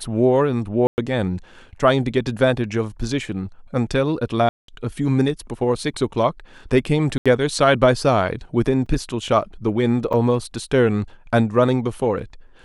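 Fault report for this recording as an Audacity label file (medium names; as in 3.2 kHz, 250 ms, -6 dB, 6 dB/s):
0.870000	0.980000	dropout 109 ms
4.490000	4.680000	dropout 193 ms
7.180000	7.260000	dropout 76 ms
8.860000	8.860000	dropout 3.8 ms
10.130000	10.140000	dropout 6.6 ms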